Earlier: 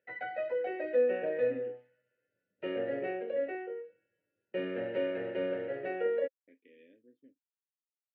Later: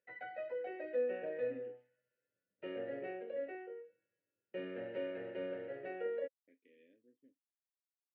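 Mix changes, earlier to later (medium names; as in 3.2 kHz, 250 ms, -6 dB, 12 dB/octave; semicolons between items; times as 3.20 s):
speech -7.0 dB; background -8.0 dB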